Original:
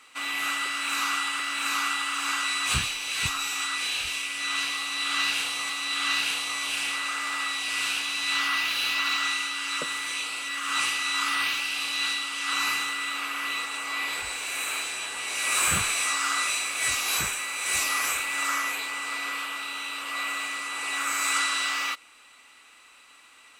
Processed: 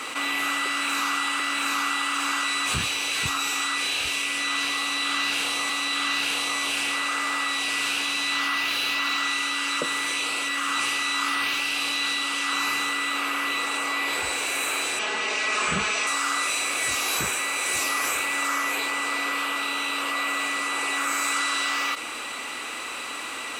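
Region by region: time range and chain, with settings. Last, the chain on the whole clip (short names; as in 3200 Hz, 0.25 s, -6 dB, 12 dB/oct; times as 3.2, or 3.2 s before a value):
14.99–16.07 LPF 6200 Hz 24 dB/oct + comb 4.7 ms, depth 84%
whole clip: HPF 51 Hz; bell 380 Hz +8 dB 2.4 oct; fast leveller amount 70%; gain -3.5 dB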